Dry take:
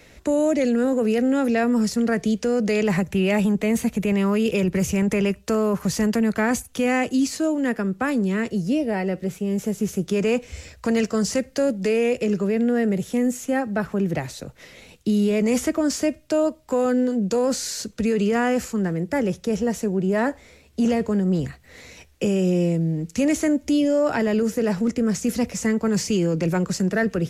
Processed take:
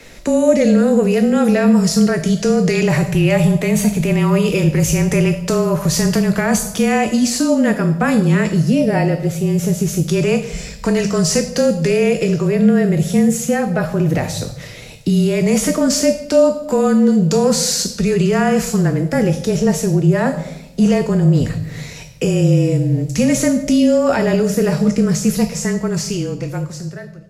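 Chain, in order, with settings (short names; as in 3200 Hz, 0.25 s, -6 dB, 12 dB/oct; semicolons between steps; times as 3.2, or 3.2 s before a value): ending faded out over 2.96 s; limiter -16.5 dBFS, peak gain reduction 5 dB; frequency shift -26 Hz; on a send: EQ curve 130 Hz 0 dB, 370 Hz -11 dB, 570 Hz +3 dB, 930 Hz -1 dB, 1900 Hz -5 dB, 5100 Hz +8 dB + reverb RT60 0.90 s, pre-delay 4 ms, DRR 6.5 dB; on the sum: gain +8 dB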